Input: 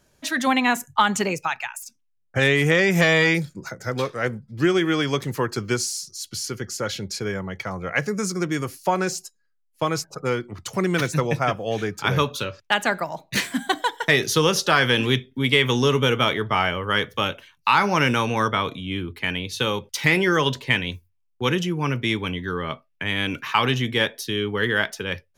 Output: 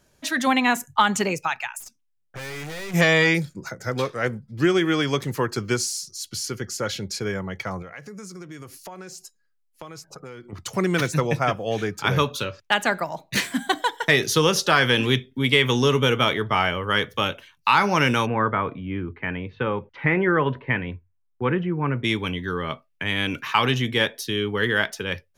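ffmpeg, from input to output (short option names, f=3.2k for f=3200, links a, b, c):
-filter_complex "[0:a]asplit=3[a][b][c];[a]afade=t=out:st=1.79:d=0.02[d];[b]aeval=exprs='(tanh(44.7*val(0)+0.45)-tanh(0.45))/44.7':c=same,afade=t=in:st=1.79:d=0.02,afade=t=out:st=2.93:d=0.02[e];[c]afade=t=in:st=2.93:d=0.02[f];[d][e][f]amix=inputs=3:normalize=0,asettb=1/sr,asplit=3[g][h][i];[g]atrim=end=7.824[j];[h]atrim=start=7.82:end=10.53,asetpts=PTS-STARTPTS,afade=t=in:d=0.004:c=qsin,afade=t=out:st=2.706:d=0.004:c=qsin,acompressor=threshold=-37dB:ratio=5:attack=3.2:release=140:knee=1:detection=peak[k];[i]atrim=start=10.526[l];[j][k]acrossfade=d=0.004:c1=hsin:c2=qsin[m];[m][l]acrossfade=d=0.004:c1=qsin:c2=hsin,asplit=3[n][o][p];[n]afade=t=out:st=18.25:d=0.02[q];[o]lowpass=f=2k:w=0.5412,lowpass=f=2k:w=1.3066,afade=t=in:st=18.25:d=0.02,afade=t=out:st=22.03:d=0.02[r];[p]afade=t=in:st=22.03:d=0.02[s];[q][r][s]amix=inputs=3:normalize=0"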